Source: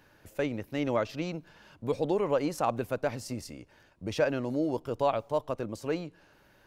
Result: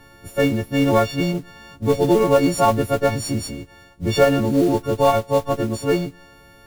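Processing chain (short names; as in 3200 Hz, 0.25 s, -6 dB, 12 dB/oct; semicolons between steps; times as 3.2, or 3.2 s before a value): frequency quantiser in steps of 4 st; modulation noise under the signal 13 dB; tilt -2.5 dB/oct; gain +8.5 dB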